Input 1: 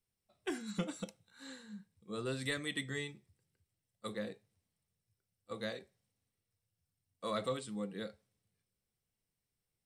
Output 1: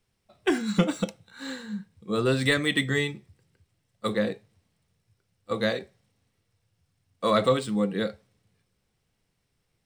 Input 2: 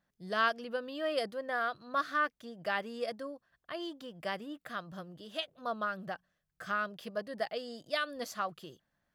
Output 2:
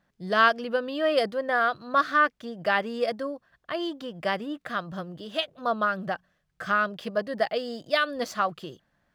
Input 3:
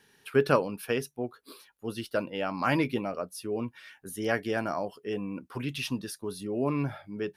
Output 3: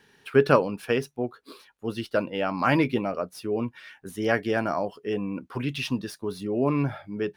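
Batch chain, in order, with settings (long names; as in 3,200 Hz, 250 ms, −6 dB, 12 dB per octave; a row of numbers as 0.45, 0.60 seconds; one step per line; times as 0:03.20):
running median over 3 samples
high-shelf EQ 5,600 Hz −6.5 dB
loudness normalisation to −27 LKFS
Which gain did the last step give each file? +15.0, +9.5, +4.5 decibels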